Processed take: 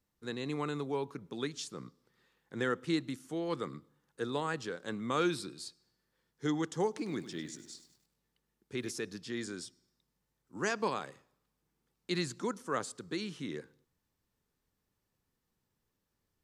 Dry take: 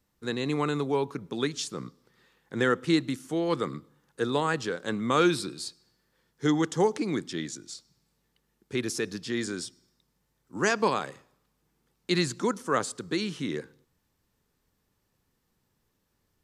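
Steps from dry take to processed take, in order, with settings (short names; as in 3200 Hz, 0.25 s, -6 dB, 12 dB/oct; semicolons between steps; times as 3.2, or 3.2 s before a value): 6.87–8.92 lo-fi delay 0.1 s, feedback 55%, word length 9-bit, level -12.5 dB; gain -8 dB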